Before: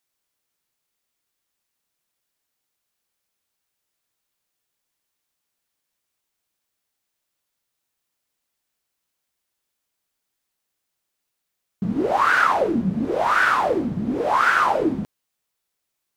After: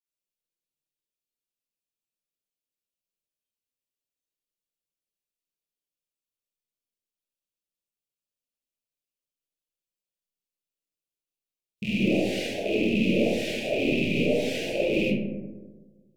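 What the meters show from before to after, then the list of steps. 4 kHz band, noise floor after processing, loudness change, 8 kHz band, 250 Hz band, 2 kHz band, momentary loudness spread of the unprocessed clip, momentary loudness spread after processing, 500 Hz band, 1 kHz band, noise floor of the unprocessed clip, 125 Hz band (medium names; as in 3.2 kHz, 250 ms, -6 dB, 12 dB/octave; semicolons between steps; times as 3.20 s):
+2.5 dB, under -85 dBFS, -6.0 dB, -1.5 dB, -0.5 dB, -10.0 dB, 9 LU, 8 LU, -1.5 dB, -24.5 dB, -80 dBFS, -0.5 dB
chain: rattle on loud lows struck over -33 dBFS, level -14 dBFS; elliptic band-stop 550–2500 Hz, stop band 80 dB; hum notches 60/120/180/240/300/360 Hz; spectral noise reduction 13 dB; compressor with a negative ratio -23 dBFS, ratio -0.5; flange 0.2 Hz, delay 5.2 ms, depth 4.9 ms, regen -45%; algorithmic reverb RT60 1.4 s, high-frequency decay 0.3×, pre-delay 5 ms, DRR -7 dB; trim -3.5 dB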